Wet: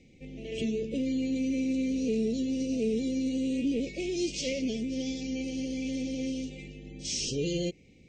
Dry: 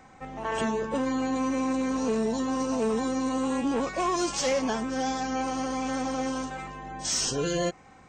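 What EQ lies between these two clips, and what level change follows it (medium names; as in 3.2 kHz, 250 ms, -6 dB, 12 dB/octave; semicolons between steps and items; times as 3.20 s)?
elliptic band-stop 620–2300 Hz, stop band 50 dB; low-pass 5 kHz 12 dB/octave; high-order bell 950 Hz -14 dB; 0.0 dB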